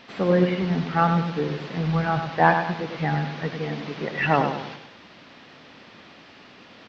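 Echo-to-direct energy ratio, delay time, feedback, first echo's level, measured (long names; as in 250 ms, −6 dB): −6.0 dB, 100 ms, 42%, −7.0 dB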